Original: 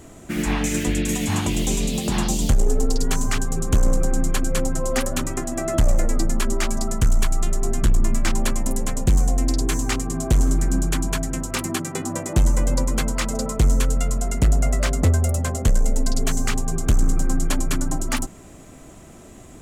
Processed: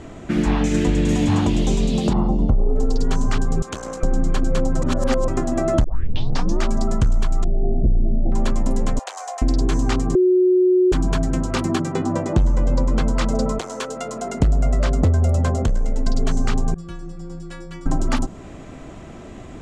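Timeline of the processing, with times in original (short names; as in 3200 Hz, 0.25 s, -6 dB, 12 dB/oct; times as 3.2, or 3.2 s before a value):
0.72–1.19 reverb throw, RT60 2.7 s, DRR 2.5 dB
2.13–2.76 polynomial smoothing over 65 samples
3.62–4.03 HPF 1400 Hz 6 dB/oct
4.82–5.28 reverse
5.84 tape start 0.78 s
7.44–8.32 steep low-pass 760 Hz 96 dB/oct
8.99–9.42 steep high-pass 650 Hz
10.15–10.92 bleep 366 Hz -13.5 dBFS
11.94–13.04 high shelf 9100 Hz -11 dB
13.58–14.4 HPF 700 Hz -> 240 Hz
15.54–16.07 compressor, threshold -21 dBFS
16.74–17.86 metallic resonator 170 Hz, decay 0.67 s, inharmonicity 0.008
whole clip: LPF 3900 Hz 12 dB/oct; dynamic EQ 2200 Hz, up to -8 dB, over -46 dBFS, Q 1.1; compressor, threshold -20 dBFS; gain +6.5 dB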